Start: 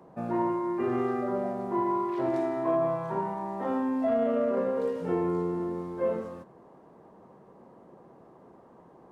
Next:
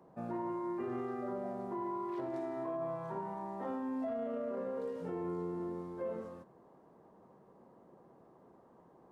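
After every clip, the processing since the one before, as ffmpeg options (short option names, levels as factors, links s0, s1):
-af "equalizer=f=2500:t=o:w=0.77:g=-2,alimiter=limit=0.0708:level=0:latency=1:release=157,volume=0.422"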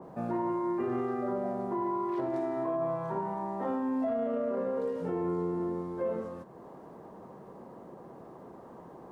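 -filter_complex "[0:a]asplit=2[s0][s1];[s1]acompressor=mode=upward:threshold=0.00794:ratio=2.5,volume=1.19[s2];[s0][s2]amix=inputs=2:normalize=0,adynamicequalizer=threshold=0.00501:dfrequency=1800:dqfactor=0.7:tfrequency=1800:tqfactor=0.7:attack=5:release=100:ratio=0.375:range=1.5:mode=cutabove:tftype=highshelf"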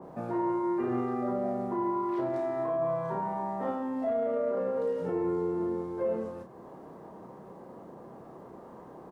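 -filter_complex "[0:a]asplit=2[s0][s1];[s1]adelay=32,volume=0.531[s2];[s0][s2]amix=inputs=2:normalize=0"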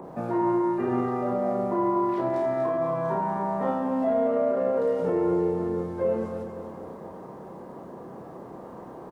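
-filter_complex "[0:a]acrossover=split=110[s0][s1];[s1]acompressor=mode=upward:threshold=0.00447:ratio=2.5[s2];[s0][s2]amix=inputs=2:normalize=0,aecho=1:1:241|482|723|964|1205|1446|1687:0.398|0.223|0.125|0.0699|0.0392|0.0219|0.0123,volume=1.78"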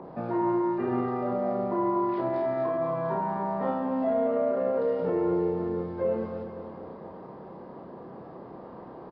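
-af "aresample=11025,aresample=44100,volume=0.794"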